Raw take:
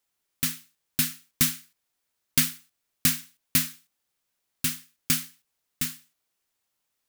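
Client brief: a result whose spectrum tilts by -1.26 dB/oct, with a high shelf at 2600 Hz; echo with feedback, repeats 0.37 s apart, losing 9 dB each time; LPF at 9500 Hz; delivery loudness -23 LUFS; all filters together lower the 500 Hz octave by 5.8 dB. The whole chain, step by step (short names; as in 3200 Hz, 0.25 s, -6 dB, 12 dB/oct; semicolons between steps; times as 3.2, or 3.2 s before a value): LPF 9500 Hz; bell 500 Hz -9 dB; high shelf 2600 Hz +3.5 dB; feedback echo 0.37 s, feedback 35%, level -9 dB; gain +6 dB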